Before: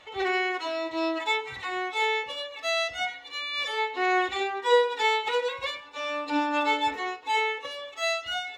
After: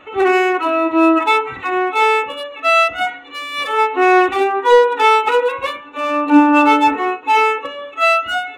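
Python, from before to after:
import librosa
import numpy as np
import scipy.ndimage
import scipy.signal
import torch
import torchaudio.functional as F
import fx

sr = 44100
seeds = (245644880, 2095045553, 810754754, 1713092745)

y = fx.wiener(x, sr, points=9)
y = 10.0 ** (-15.5 / 20.0) * np.tanh(y / 10.0 ** (-15.5 / 20.0))
y = fx.dynamic_eq(y, sr, hz=900.0, q=1.2, threshold_db=-41.0, ratio=4.0, max_db=6)
y = fx.small_body(y, sr, hz=(280.0, 1300.0, 2600.0), ring_ms=20, db=12)
y = y * 10.0 ** (7.5 / 20.0)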